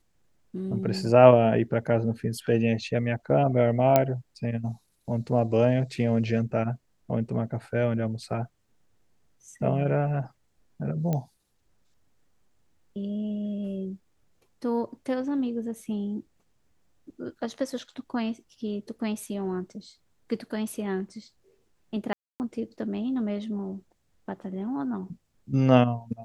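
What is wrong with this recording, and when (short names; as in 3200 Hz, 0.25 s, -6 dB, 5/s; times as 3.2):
3.96 pop -6 dBFS
11.13 pop -16 dBFS
22.13–22.4 gap 0.269 s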